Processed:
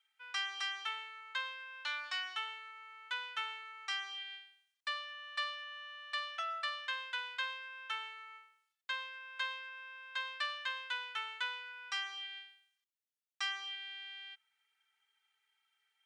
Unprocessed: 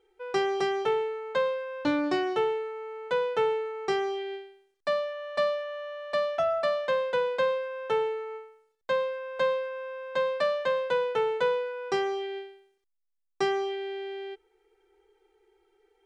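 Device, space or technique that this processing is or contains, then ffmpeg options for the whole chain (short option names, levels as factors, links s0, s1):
headphones lying on a table: -af "highpass=f=1300:w=0.5412,highpass=f=1300:w=1.3066,equalizer=f=3100:t=o:w=0.44:g=5,volume=0.708"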